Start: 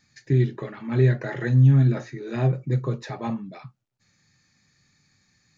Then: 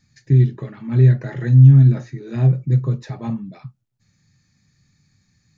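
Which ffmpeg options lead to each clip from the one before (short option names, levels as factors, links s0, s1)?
-af "bass=f=250:g=12,treble=f=4000:g=3,volume=0.668"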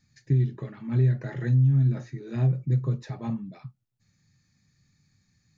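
-af "acompressor=threshold=0.224:ratio=4,volume=0.531"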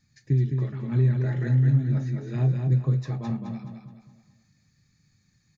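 -af "aecho=1:1:212|424|636|848|1060:0.562|0.225|0.09|0.036|0.0144"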